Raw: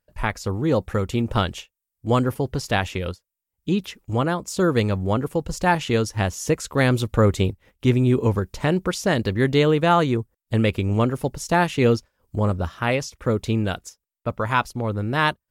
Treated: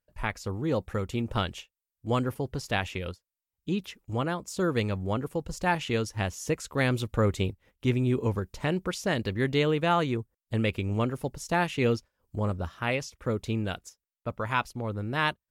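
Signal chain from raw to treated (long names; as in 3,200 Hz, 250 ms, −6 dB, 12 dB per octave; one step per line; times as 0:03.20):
dynamic equaliser 2,500 Hz, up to +4 dB, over −37 dBFS, Q 1.6
level −7.5 dB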